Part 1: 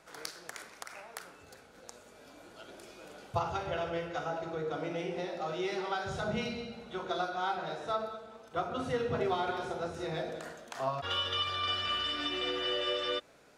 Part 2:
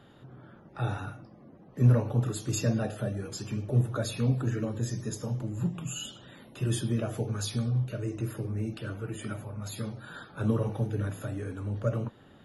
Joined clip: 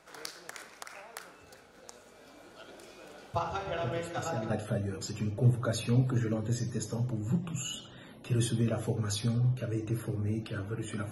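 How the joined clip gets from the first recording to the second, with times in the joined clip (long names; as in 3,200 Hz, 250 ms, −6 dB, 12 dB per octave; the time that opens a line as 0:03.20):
part 1
0:03.80: mix in part 2 from 0:02.11 0.70 s −11 dB
0:04.50: continue with part 2 from 0:02.81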